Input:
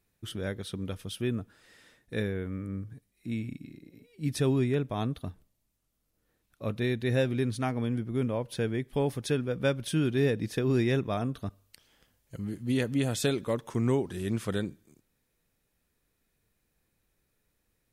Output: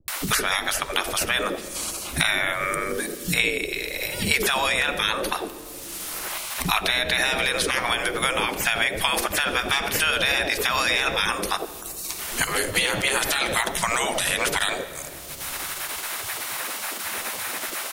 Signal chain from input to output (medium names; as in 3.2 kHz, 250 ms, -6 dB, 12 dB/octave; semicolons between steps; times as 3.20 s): spectral gate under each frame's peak -20 dB weak; peaking EQ 9.5 kHz +3.5 dB 0.21 oct; in parallel at +0.5 dB: compression, threshold -39 dBFS, peak gain reduction 5.5 dB; on the sum: hard clipper -26 dBFS, distortion -22 dB; three bands offset in time lows, highs, mids 80/160 ms, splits 190/650 Hz; on a send at -13 dB: reverberation RT60 1.0 s, pre-delay 5 ms; on the sum: loudness maximiser +29 dB; three bands compressed up and down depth 100%; trim -9 dB